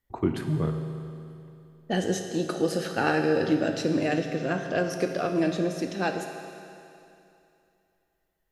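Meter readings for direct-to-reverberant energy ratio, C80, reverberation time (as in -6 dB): 4.5 dB, 6.5 dB, 2.7 s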